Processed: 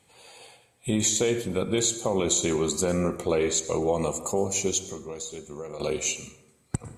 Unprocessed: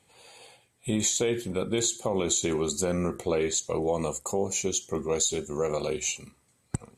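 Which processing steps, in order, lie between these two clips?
0:04.82–0:05.80: downward compressor 2.5 to 1, threshold −42 dBFS, peak gain reduction 13.5 dB
dense smooth reverb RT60 0.94 s, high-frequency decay 0.5×, pre-delay 90 ms, DRR 12.5 dB
level +2 dB

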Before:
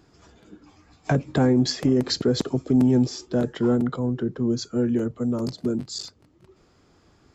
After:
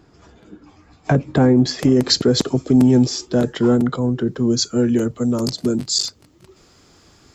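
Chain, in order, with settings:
high-shelf EQ 3,100 Hz −5.5 dB, from 0:01.79 +6 dB, from 0:04.27 +11.5 dB
level +5.5 dB

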